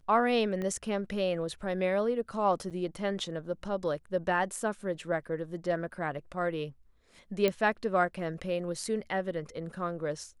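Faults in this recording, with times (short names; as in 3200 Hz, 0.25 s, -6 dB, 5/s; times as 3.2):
0.62 pop -24 dBFS
2.7–2.71 gap 7.1 ms
7.48 pop -14 dBFS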